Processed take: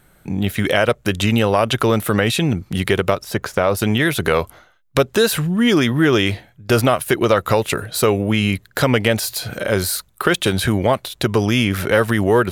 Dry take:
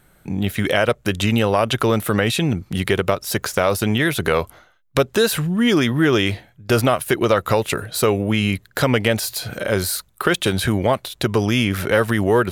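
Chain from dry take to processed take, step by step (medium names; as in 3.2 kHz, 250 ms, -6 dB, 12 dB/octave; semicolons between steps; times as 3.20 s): 3.24–3.77 s: treble shelf 3.4 kHz -10.5 dB; trim +1.5 dB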